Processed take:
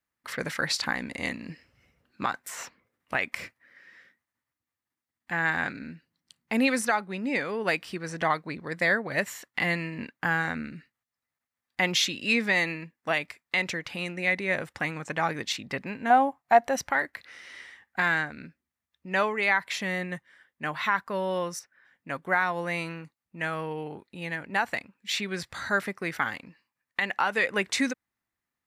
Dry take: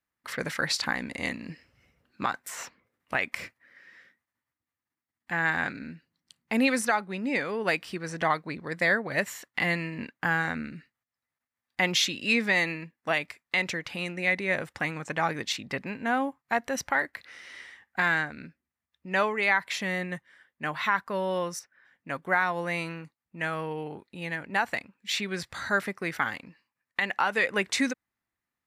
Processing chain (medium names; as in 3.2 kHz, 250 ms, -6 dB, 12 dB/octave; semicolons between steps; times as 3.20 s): 16.10–16.77 s: peaking EQ 720 Hz +12 dB 0.62 oct